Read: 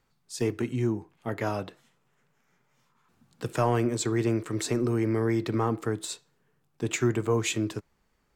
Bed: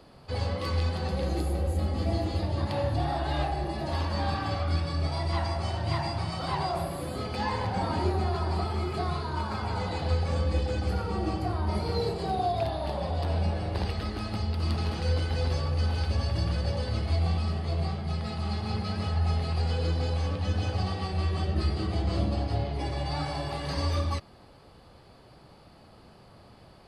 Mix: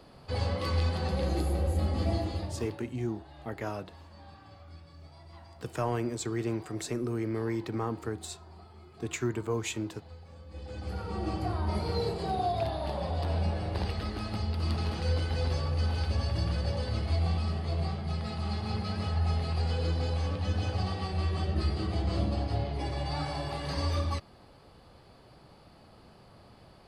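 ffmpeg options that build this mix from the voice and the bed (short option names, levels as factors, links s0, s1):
-filter_complex "[0:a]adelay=2200,volume=0.501[s0];[1:a]volume=9.44,afade=t=out:st=2.05:d=0.75:silence=0.0841395,afade=t=in:st=10.48:d=0.94:silence=0.1[s1];[s0][s1]amix=inputs=2:normalize=0"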